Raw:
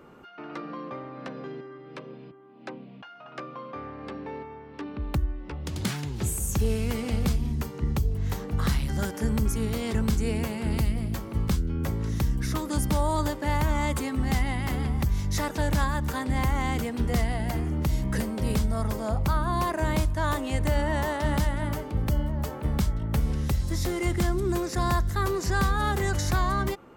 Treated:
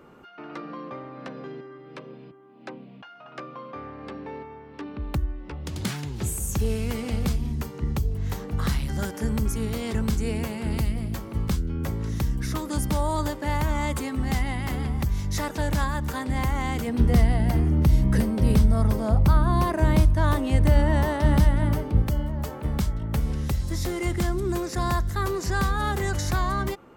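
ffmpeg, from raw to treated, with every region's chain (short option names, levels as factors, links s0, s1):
-filter_complex "[0:a]asettb=1/sr,asplit=3[s0][s1][s2];[s0]atrim=end=16.874[s3];[s1]atrim=start=16.87:end=22.02,asetpts=PTS-STARTPTS,afade=t=in:d=0.004:c=qsin,afade=t=out:st=5.146:d=0.004:c=qsin,lowshelf=f=390:g=8,bandreject=f=7100:w=7.9[s4];[s2]atrim=start=22.016[s5];[s3][s4]acrossfade=d=0.004:c1=hsin:c2=qsin[s6];[s6][s5]acrossfade=d=0.004:c1=qsin:c2=hsin"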